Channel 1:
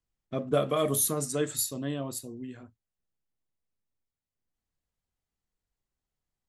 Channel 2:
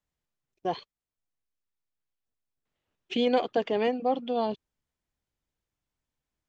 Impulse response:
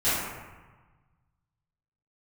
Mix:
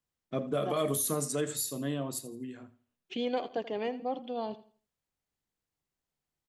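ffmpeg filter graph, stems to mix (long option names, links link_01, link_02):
-filter_complex "[0:a]highpass=frequency=110:width=0.5412,highpass=frequency=110:width=1.3066,bandreject=frequency=60:width_type=h:width=6,bandreject=frequency=120:width_type=h:width=6,bandreject=frequency=180:width_type=h:width=6,bandreject=frequency=240:width_type=h:width=6,volume=-0.5dB,asplit=2[link_01][link_02];[link_02]volume=-17dB[link_03];[1:a]volume=-7.5dB,asplit=2[link_04][link_05];[link_05]volume=-16dB[link_06];[link_03][link_06]amix=inputs=2:normalize=0,aecho=0:1:83|166|249|332:1|0.28|0.0784|0.022[link_07];[link_01][link_04][link_07]amix=inputs=3:normalize=0,alimiter=limit=-20.5dB:level=0:latency=1:release=73"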